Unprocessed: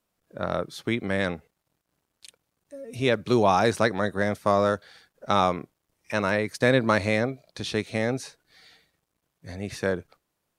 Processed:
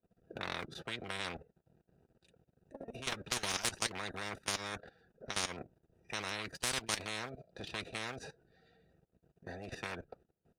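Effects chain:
adaptive Wiener filter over 41 samples
output level in coarse steps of 21 dB
low-shelf EQ 220 Hz −4 dB
notch comb filter 290 Hz
every bin compressed towards the loudest bin 10 to 1
level −5 dB

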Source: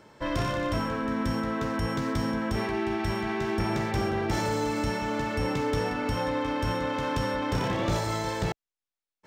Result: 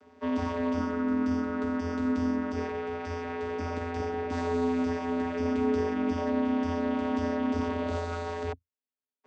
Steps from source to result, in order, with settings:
channel vocoder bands 16, square 85.2 Hz

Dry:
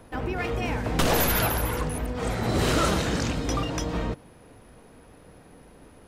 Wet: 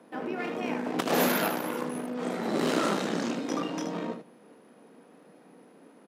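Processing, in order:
spectral tilt −1.5 dB per octave
on a send: ambience of single reflections 29 ms −7.5 dB, 77 ms −8 dB
on the sum: tube saturation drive 11 dB, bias 0.8
Butterworth high-pass 190 Hz 36 dB per octave

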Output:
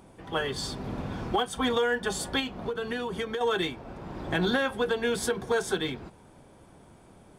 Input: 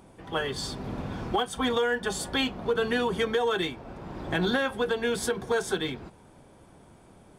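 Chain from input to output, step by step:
0:02.39–0:03.41: downward compressor 6 to 1, threshold −29 dBFS, peak gain reduction 8 dB

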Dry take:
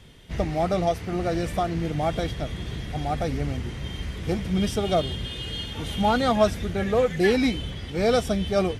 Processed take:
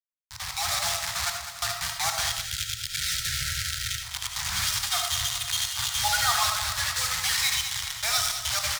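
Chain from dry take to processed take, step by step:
time-frequency cells dropped at random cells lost 34%
bit reduction 5 bits
meter weighting curve D
repeating echo 204 ms, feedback 59%, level −10.5 dB
time-frequency box erased 0:02.35–0:04.02, 600–1,300 Hz
elliptic band-stop filter 110–930 Hz, stop band 80 dB
parametric band 2,800 Hz −12 dB 1.1 octaves
hum removal 49.44 Hz, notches 30
automatic gain control gain up to 11.5 dB
comb and all-pass reverb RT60 0.44 s, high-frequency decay 0.35×, pre-delay 35 ms, DRR 4.5 dB
level −8 dB

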